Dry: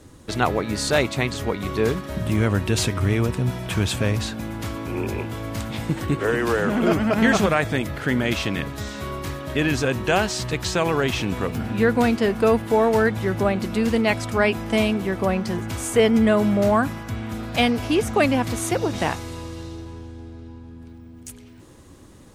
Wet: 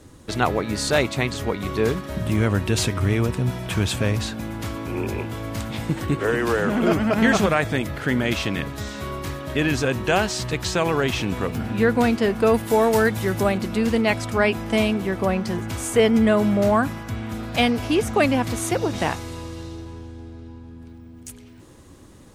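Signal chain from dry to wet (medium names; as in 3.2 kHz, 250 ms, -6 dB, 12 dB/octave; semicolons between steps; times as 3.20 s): 12.54–13.58 s: treble shelf 5.1 kHz +11.5 dB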